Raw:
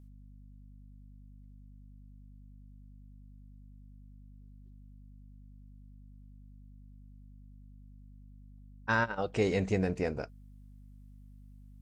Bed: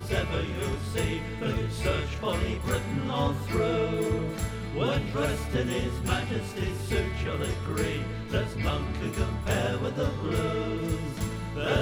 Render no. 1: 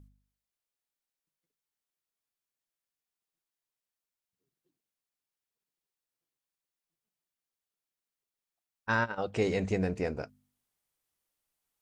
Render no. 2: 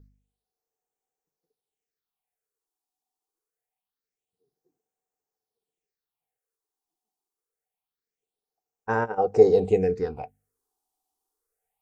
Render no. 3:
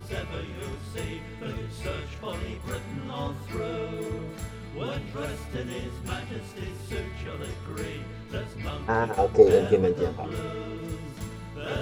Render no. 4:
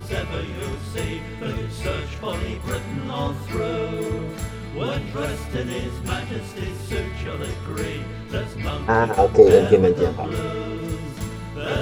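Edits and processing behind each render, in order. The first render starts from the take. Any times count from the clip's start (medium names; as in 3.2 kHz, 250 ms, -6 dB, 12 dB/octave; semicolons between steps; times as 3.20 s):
de-hum 50 Hz, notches 5
phase shifter stages 6, 0.25 Hz, lowest notch 130–4000 Hz; small resonant body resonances 450/750 Hz, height 18 dB, ringing for 55 ms
add bed -5.5 dB
trim +7 dB; peak limiter -1 dBFS, peak gain reduction 3 dB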